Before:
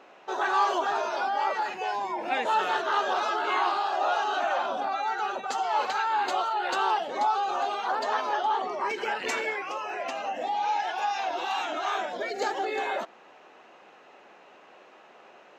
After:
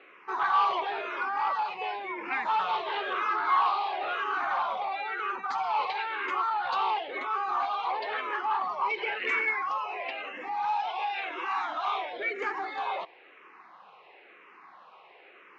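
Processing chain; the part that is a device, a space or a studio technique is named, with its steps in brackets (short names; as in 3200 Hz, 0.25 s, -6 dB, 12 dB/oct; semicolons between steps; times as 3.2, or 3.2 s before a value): barber-pole phaser into a guitar amplifier (endless phaser -0.98 Hz; soft clip -23.5 dBFS, distortion -16 dB; speaker cabinet 87–4400 Hz, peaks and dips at 120 Hz -6 dB, 240 Hz -8 dB, 610 Hz -6 dB, 1100 Hz +9 dB, 2200 Hz +9 dB)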